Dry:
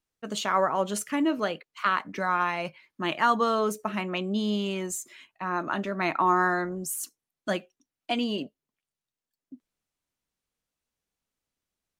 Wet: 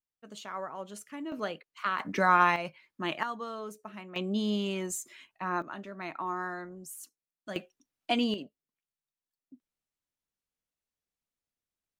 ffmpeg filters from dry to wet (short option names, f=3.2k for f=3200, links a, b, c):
-af "asetnsamples=n=441:p=0,asendcmd='1.32 volume volume -6dB;1.99 volume volume 3.5dB;2.56 volume volume -4dB;3.23 volume volume -14dB;4.16 volume volume -2.5dB;5.62 volume volume -12dB;7.56 volume volume 0dB;8.34 volume volume -8dB',volume=-14dB"